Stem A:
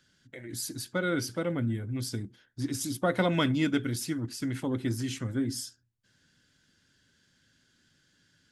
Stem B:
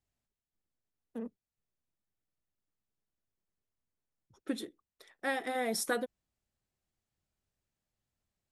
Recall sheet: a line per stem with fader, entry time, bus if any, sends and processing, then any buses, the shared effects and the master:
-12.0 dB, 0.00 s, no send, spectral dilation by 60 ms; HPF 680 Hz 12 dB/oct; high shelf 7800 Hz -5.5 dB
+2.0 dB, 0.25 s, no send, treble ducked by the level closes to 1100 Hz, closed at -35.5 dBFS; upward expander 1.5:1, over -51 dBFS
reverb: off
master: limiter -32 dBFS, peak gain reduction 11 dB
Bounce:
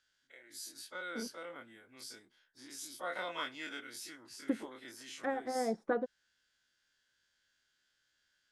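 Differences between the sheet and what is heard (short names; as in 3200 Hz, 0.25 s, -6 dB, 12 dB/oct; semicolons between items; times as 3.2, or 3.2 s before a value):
stem B: entry 0.25 s -> 0.00 s; master: missing limiter -32 dBFS, peak gain reduction 11 dB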